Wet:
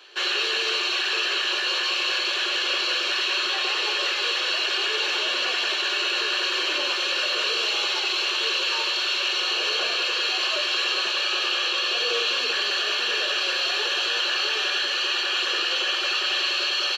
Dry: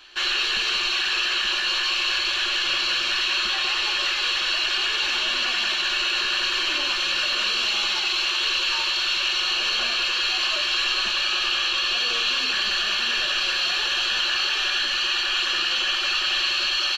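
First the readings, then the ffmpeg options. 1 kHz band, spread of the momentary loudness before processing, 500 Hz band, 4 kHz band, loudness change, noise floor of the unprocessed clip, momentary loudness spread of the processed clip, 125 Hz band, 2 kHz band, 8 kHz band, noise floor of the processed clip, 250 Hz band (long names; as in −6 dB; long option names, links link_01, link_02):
0.0 dB, 1 LU, +7.0 dB, −1.5 dB, −1.0 dB, −25 dBFS, 1 LU, can't be measured, −1.0 dB, −1.5 dB, −26 dBFS, +2.0 dB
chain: -af "highpass=frequency=440:width_type=q:width=4.9,volume=-1.5dB"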